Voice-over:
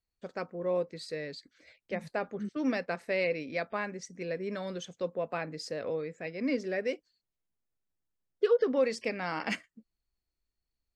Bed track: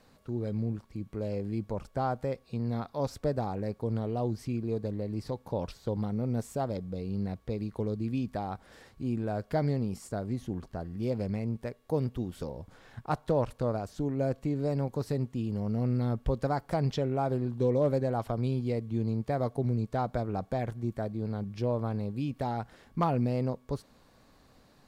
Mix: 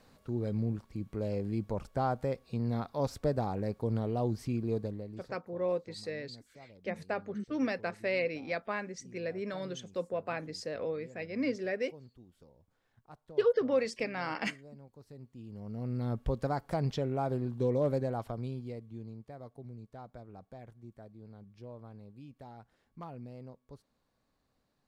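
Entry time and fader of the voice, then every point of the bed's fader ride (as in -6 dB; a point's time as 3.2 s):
4.95 s, -1.5 dB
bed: 4.78 s -0.5 dB
5.55 s -22.5 dB
14.97 s -22.5 dB
16.14 s -3 dB
18 s -3 dB
19.33 s -17.5 dB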